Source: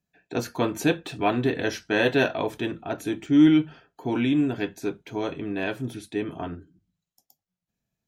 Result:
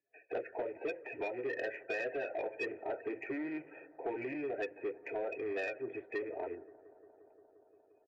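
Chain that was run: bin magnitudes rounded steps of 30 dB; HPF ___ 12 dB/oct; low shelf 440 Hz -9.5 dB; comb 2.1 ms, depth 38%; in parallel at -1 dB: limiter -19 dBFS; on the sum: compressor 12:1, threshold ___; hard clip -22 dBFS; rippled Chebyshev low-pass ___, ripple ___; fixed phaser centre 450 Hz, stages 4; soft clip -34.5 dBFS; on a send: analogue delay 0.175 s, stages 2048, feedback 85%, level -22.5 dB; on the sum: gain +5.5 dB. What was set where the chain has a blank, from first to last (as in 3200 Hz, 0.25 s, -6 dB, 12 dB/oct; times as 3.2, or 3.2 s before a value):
180 Hz, -31 dBFS, 2600 Hz, 9 dB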